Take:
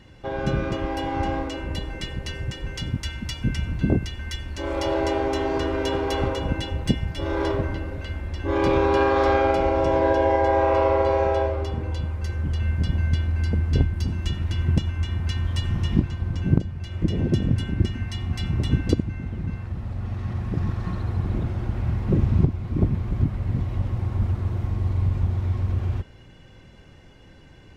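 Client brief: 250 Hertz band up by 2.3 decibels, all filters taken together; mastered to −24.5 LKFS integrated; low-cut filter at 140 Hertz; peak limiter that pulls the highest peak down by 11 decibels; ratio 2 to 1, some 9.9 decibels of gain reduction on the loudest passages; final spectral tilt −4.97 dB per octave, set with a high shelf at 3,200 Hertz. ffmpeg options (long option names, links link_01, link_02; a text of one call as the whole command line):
ffmpeg -i in.wav -af "highpass=140,equalizer=frequency=250:width_type=o:gain=4,highshelf=frequency=3200:gain=8,acompressor=threshold=-33dB:ratio=2,volume=10dB,alimiter=limit=-14dB:level=0:latency=1" out.wav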